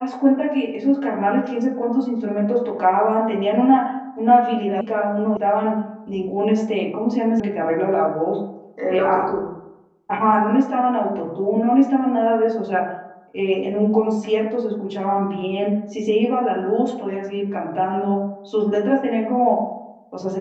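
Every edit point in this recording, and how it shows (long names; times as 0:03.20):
0:04.81: cut off before it has died away
0:05.37: cut off before it has died away
0:07.40: cut off before it has died away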